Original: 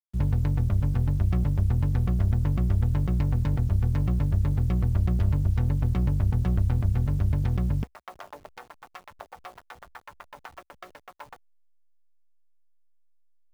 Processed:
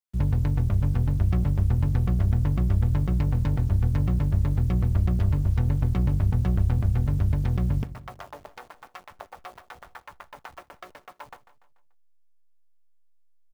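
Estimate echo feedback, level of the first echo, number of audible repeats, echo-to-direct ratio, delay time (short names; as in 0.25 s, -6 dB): 47%, -15.0 dB, 4, -14.0 dB, 0.145 s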